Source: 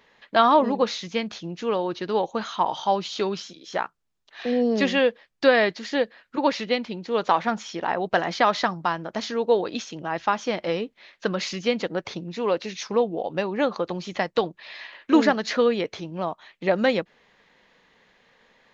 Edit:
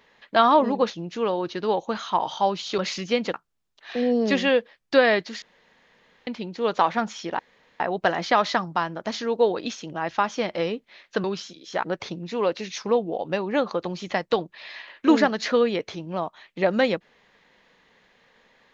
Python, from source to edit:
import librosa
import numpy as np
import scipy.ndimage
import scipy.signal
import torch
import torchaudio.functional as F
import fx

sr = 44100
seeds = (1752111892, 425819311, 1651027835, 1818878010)

y = fx.edit(x, sr, fx.cut(start_s=0.9, length_s=0.46),
    fx.swap(start_s=3.24, length_s=0.6, other_s=11.33, other_length_s=0.56),
    fx.room_tone_fill(start_s=5.92, length_s=0.85),
    fx.insert_room_tone(at_s=7.89, length_s=0.41), tone=tone)